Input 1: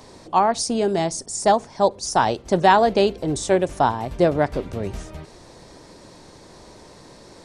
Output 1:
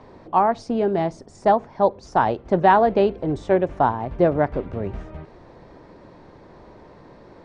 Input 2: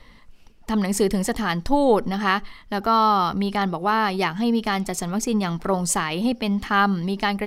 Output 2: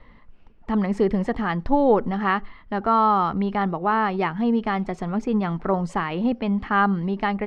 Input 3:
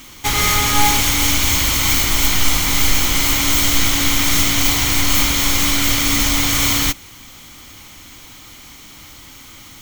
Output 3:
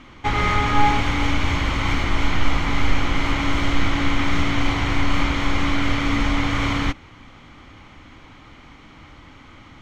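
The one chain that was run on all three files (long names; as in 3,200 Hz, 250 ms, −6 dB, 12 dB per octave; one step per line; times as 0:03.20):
low-pass filter 1,900 Hz 12 dB per octave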